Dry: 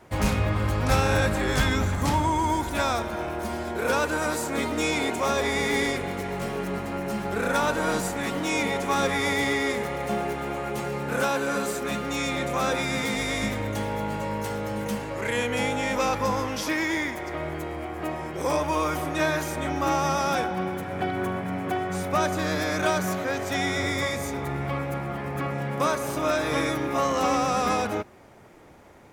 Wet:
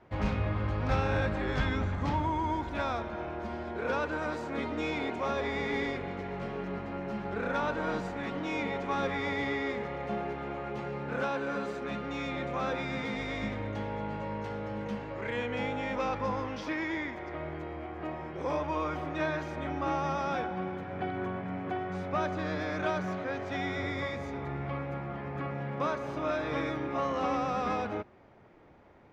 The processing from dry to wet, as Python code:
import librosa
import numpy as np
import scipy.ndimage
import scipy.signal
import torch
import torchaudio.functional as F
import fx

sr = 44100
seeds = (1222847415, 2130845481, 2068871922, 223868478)

y = fx.air_absorb(x, sr, metres=220.0)
y = F.gain(torch.from_numpy(y), -6.0).numpy()